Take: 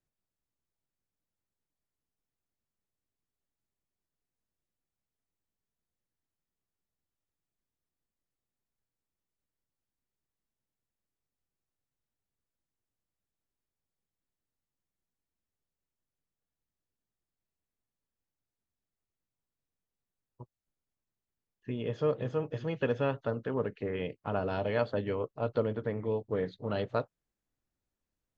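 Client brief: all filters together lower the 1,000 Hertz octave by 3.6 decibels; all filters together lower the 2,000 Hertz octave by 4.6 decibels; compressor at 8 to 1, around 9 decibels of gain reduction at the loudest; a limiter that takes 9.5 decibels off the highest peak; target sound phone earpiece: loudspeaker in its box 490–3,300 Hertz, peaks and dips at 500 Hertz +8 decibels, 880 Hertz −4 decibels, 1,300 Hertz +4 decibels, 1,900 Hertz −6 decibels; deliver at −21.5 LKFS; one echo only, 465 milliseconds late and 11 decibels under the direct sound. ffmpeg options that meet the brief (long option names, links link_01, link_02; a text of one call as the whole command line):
ffmpeg -i in.wav -af "equalizer=frequency=1000:width_type=o:gain=-4,equalizer=frequency=2000:width_type=o:gain=-3,acompressor=threshold=-34dB:ratio=8,alimiter=level_in=7dB:limit=-24dB:level=0:latency=1,volume=-7dB,highpass=490,equalizer=frequency=500:width_type=q:width=4:gain=8,equalizer=frequency=880:width_type=q:width=4:gain=-4,equalizer=frequency=1300:width_type=q:width=4:gain=4,equalizer=frequency=1900:width_type=q:width=4:gain=-6,lowpass=frequency=3300:width=0.5412,lowpass=frequency=3300:width=1.3066,aecho=1:1:465:0.282,volume=21dB" out.wav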